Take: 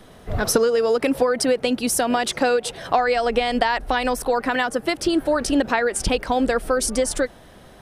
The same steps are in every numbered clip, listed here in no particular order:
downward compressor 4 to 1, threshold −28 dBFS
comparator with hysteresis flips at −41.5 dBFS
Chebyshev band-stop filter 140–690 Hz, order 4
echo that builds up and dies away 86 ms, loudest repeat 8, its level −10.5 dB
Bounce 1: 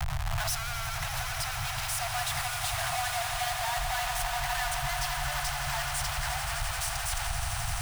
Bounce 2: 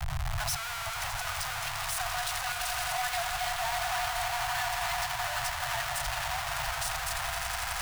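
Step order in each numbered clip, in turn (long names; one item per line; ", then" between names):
comparator with hysteresis, then echo that builds up and dies away, then downward compressor, then Chebyshev band-stop filter
echo that builds up and dies away, then downward compressor, then comparator with hysteresis, then Chebyshev band-stop filter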